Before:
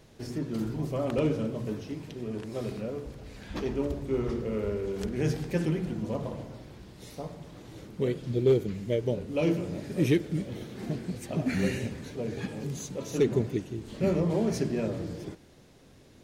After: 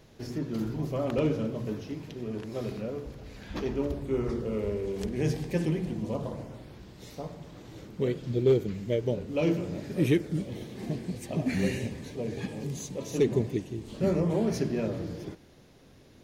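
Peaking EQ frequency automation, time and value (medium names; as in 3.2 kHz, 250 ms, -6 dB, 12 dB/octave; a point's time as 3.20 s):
peaking EQ -10 dB 0.23 oct
3.88 s 8.6 kHz
4.62 s 1.4 kHz
6.08 s 1.4 kHz
6.83 s 9.8 kHz
9.89 s 9.8 kHz
10.51 s 1.4 kHz
13.83 s 1.4 kHz
14.55 s 8.1 kHz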